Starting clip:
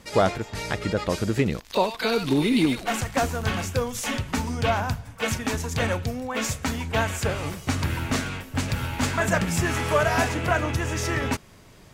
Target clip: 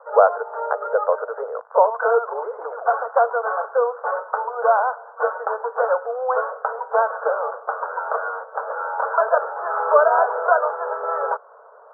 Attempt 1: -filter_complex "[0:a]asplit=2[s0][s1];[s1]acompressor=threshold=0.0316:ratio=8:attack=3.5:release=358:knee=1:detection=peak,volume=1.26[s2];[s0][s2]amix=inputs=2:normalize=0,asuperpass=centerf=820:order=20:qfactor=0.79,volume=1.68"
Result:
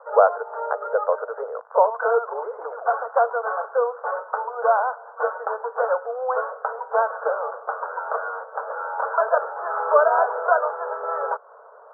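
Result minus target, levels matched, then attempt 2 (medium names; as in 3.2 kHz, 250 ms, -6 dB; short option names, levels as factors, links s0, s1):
compression: peak gain reduction +6.5 dB
-filter_complex "[0:a]asplit=2[s0][s1];[s1]acompressor=threshold=0.075:ratio=8:attack=3.5:release=358:knee=1:detection=peak,volume=1.26[s2];[s0][s2]amix=inputs=2:normalize=0,asuperpass=centerf=820:order=20:qfactor=0.79,volume=1.68"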